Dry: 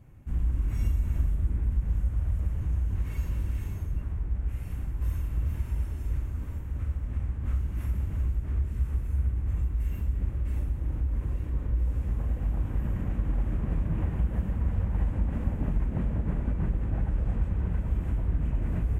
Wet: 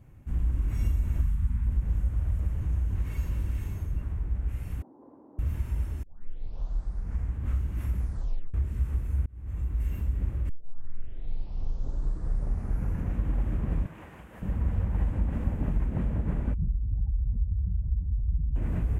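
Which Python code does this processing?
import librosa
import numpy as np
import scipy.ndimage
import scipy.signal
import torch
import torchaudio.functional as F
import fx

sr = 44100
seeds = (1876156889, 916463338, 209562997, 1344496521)

y = fx.spec_erase(x, sr, start_s=1.21, length_s=0.46, low_hz=270.0, high_hz=820.0)
y = fx.cheby1_bandpass(y, sr, low_hz=260.0, high_hz=920.0, order=3, at=(4.82, 5.39))
y = fx.highpass(y, sr, hz=1100.0, slope=6, at=(13.86, 14.42))
y = fx.spec_expand(y, sr, power=2.0, at=(16.54, 18.56))
y = fx.edit(y, sr, fx.tape_start(start_s=6.03, length_s=1.33),
    fx.tape_stop(start_s=7.95, length_s=0.59),
    fx.fade_in_span(start_s=9.26, length_s=0.5),
    fx.tape_start(start_s=10.49, length_s=2.73), tone=tone)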